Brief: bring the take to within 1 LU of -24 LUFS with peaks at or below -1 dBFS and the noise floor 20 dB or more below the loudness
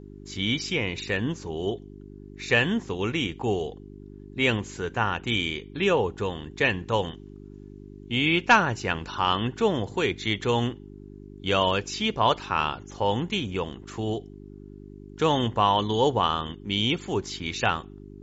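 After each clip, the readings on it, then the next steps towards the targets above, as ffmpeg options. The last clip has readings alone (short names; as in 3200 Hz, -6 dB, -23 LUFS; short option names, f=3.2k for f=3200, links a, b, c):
hum 50 Hz; harmonics up to 400 Hz; hum level -41 dBFS; loudness -26.0 LUFS; peak -6.0 dBFS; loudness target -24.0 LUFS
-> -af "bandreject=f=50:t=h:w=4,bandreject=f=100:t=h:w=4,bandreject=f=150:t=h:w=4,bandreject=f=200:t=h:w=4,bandreject=f=250:t=h:w=4,bandreject=f=300:t=h:w=4,bandreject=f=350:t=h:w=4,bandreject=f=400:t=h:w=4"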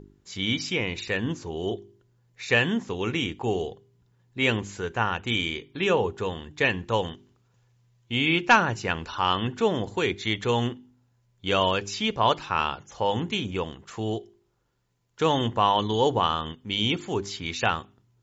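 hum none; loudness -26.0 LUFS; peak -5.5 dBFS; loudness target -24.0 LUFS
-> -af "volume=2dB"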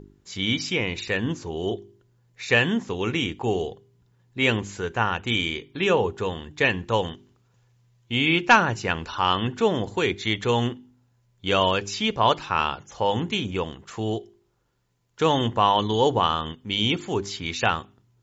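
loudness -24.0 LUFS; peak -3.5 dBFS; noise floor -65 dBFS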